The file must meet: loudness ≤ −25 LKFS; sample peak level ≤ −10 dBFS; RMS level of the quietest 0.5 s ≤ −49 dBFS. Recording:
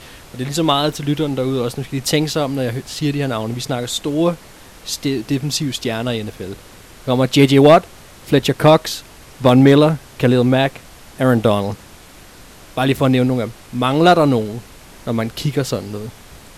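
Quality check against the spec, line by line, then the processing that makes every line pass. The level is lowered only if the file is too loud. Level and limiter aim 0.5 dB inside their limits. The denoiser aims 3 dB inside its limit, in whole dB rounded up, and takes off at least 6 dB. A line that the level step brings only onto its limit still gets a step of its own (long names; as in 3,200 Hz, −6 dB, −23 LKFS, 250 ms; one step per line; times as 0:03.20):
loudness −16.5 LKFS: out of spec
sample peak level −1.5 dBFS: out of spec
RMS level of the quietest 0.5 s −41 dBFS: out of spec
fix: level −9 dB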